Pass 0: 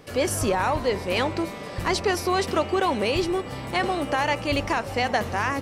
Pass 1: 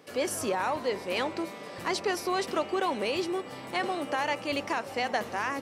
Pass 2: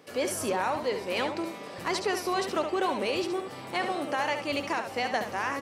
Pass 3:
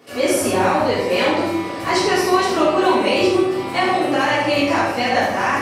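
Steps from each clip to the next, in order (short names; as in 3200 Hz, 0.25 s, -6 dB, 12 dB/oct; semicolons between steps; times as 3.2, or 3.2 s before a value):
HPF 210 Hz 12 dB/oct; gain -5.5 dB
echo 70 ms -8 dB
shoebox room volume 220 m³, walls mixed, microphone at 3.3 m; gain +1.5 dB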